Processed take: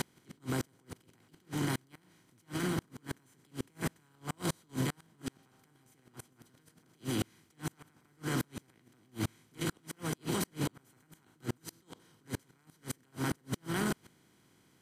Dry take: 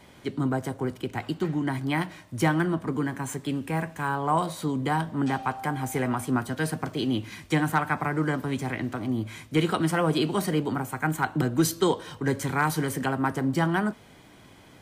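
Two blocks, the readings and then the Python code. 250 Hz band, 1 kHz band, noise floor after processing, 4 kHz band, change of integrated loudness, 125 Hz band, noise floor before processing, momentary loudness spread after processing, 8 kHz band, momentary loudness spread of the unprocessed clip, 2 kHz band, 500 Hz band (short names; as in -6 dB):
-12.5 dB, -17.0 dB, -69 dBFS, -8.0 dB, -11.0 dB, -11.0 dB, -52 dBFS, 16 LU, -6.5 dB, 6 LU, -13.5 dB, -14.0 dB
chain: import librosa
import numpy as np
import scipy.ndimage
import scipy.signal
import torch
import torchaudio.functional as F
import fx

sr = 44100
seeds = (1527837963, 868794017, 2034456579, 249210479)

y = fx.bin_compress(x, sr, power=0.4)
y = fx.peak_eq(y, sr, hz=750.0, db=-11.5, octaves=2.7)
y = fx.over_compress(y, sr, threshold_db=-30.0, ratio=-1.0)
y = fx.echo_swing(y, sr, ms=736, ratio=1.5, feedback_pct=72, wet_db=-16.0)
y = fx.gate_flip(y, sr, shuts_db=-20.0, range_db=-36)
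y = y * 10.0 ** (-1.0 / 20.0)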